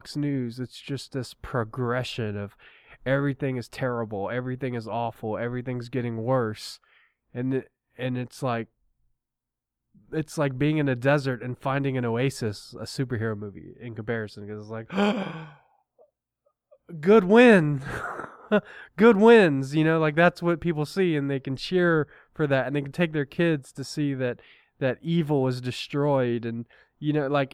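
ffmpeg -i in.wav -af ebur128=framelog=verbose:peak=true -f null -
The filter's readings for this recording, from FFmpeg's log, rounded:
Integrated loudness:
  I:         -25.0 LUFS
  Threshold: -35.8 LUFS
Loudness range:
  LRA:        10.7 LU
  Threshold: -45.8 LUFS
  LRA low:   -31.5 LUFS
  LRA high:  -20.9 LUFS
True peak:
  Peak:       -4.0 dBFS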